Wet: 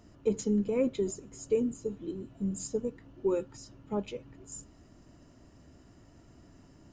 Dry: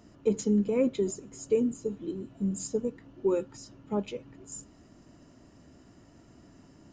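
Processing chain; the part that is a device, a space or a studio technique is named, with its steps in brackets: low shelf boost with a cut just above (low shelf 100 Hz +7.5 dB; bell 210 Hz -2.5 dB 1.1 oct); gain -2 dB

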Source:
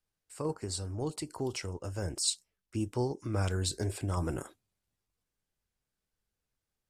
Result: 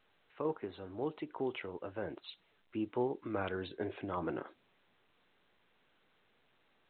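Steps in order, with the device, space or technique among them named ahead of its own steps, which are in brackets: telephone (BPF 260–3200 Hz; A-law 64 kbps 8000 Hz)

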